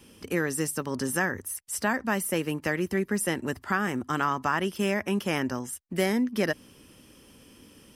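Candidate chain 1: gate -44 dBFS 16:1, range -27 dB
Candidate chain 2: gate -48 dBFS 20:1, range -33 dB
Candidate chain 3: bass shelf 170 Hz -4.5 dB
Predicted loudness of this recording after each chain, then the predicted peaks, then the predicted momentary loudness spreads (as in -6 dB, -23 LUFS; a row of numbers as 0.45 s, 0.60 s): -28.5 LUFS, -28.5 LUFS, -29.0 LUFS; -11.5 dBFS, -11.5 dBFS, -12.0 dBFS; 6 LU, 5 LU, 6 LU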